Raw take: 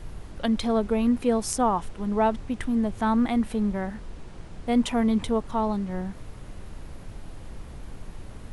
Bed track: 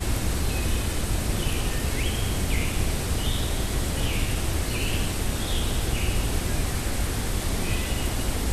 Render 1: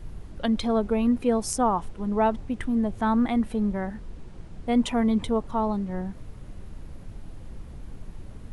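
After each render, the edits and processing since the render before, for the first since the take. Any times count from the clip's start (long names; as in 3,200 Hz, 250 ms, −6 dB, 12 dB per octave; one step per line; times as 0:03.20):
broadband denoise 6 dB, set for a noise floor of −42 dBFS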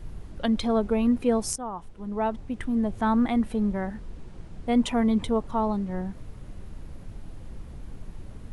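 0:01.56–0:02.93: fade in, from −14 dB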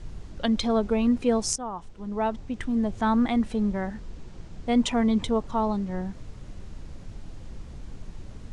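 low-pass filter 7,200 Hz 24 dB per octave
high-shelf EQ 5,100 Hz +11.5 dB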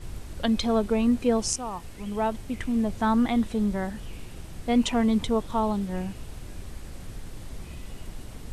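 mix in bed track −19 dB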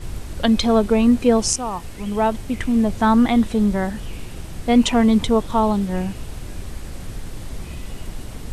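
level +7.5 dB
brickwall limiter −3 dBFS, peak gain reduction 0.5 dB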